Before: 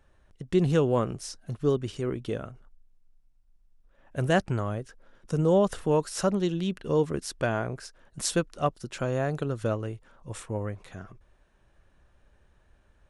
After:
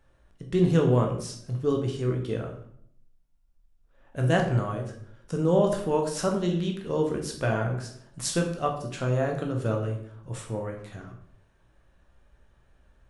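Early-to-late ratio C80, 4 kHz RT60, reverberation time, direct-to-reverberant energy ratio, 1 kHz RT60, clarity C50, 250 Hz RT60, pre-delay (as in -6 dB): 10.0 dB, 0.50 s, 0.65 s, 1.5 dB, 0.60 s, 6.5 dB, 0.85 s, 12 ms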